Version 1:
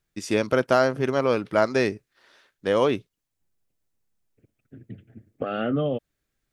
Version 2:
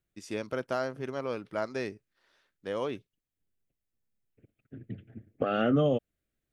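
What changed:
first voice −12.0 dB
second voice: remove linear-phase brick-wall low-pass 4,800 Hz

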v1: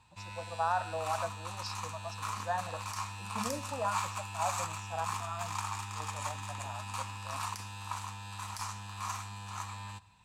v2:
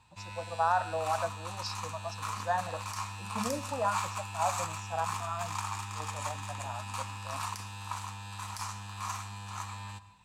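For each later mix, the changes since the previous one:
speech +3.5 dB
background: send +8.0 dB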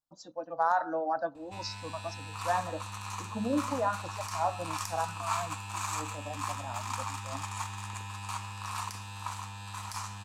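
speech: add parametric band 310 Hz +13 dB 0.56 octaves
background: entry +1.35 s

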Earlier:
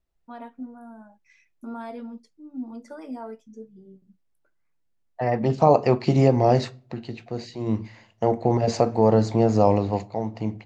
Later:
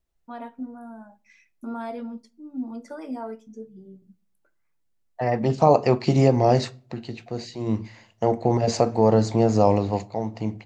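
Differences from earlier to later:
first voice: send on
second voice: add high-shelf EQ 6,500 Hz +9 dB

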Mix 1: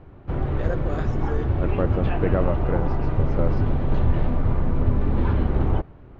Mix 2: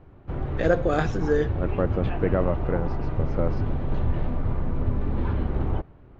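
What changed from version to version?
first voice +9.5 dB
background −4.5 dB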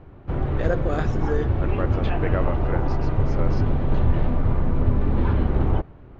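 first voice −4.0 dB
second voice: add spectral tilt +4 dB per octave
background +5.0 dB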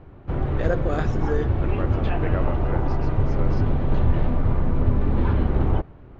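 second voice −3.5 dB

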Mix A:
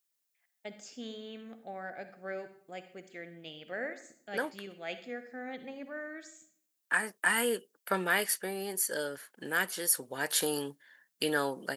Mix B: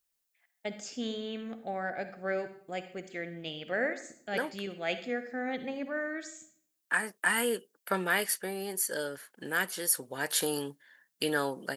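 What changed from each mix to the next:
first voice +6.5 dB
master: add low-shelf EQ 100 Hz +6.5 dB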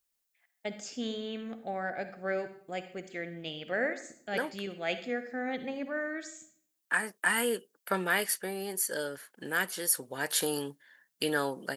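nothing changed

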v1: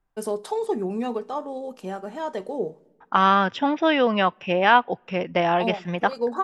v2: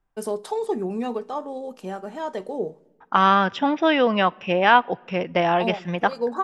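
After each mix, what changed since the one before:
second voice: send +10.5 dB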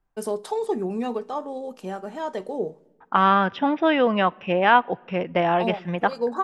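second voice: add high-frequency loss of the air 200 metres

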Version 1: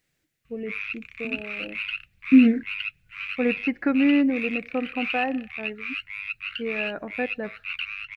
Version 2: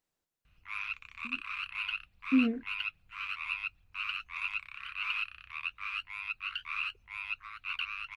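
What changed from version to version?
first voice: muted
second voice −10.5 dB
master: add octave-band graphic EQ 125/1,000/2,000 Hz −9/+11/−10 dB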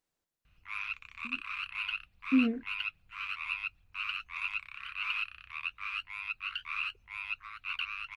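nothing changed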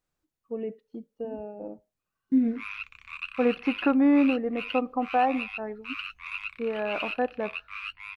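first voice: unmuted
second voice: add low-shelf EQ 160 Hz +11.5 dB
background: entry +1.90 s

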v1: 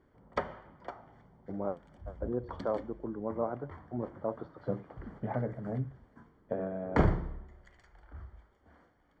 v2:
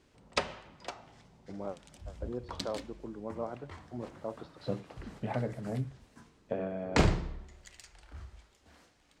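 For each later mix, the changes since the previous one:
first voice −4.5 dB
master: remove Savitzky-Golay smoothing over 41 samples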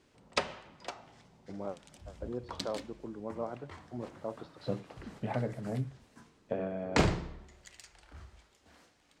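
background: add low-shelf EQ 62 Hz −10 dB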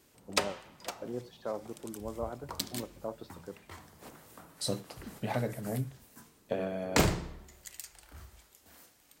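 first voice: entry −1.20 s
second voice: remove high-frequency loss of the air 380 metres
master: remove high-frequency loss of the air 100 metres

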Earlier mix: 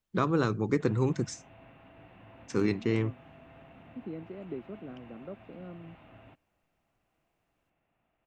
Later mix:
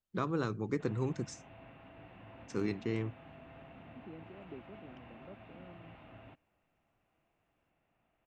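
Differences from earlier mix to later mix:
first voice −7.0 dB
second voice −10.0 dB

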